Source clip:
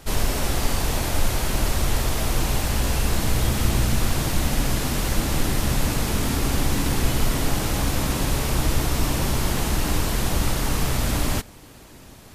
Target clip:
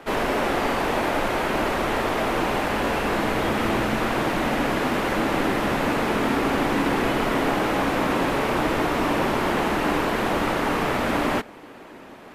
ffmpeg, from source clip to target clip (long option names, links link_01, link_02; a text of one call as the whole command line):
ffmpeg -i in.wav -filter_complex "[0:a]acrossover=split=220 2700:gain=0.0794 1 0.1[link_01][link_02][link_03];[link_01][link_02][link_03]amix=inputs=3:normalize=0,volume=7.5dB" out.wav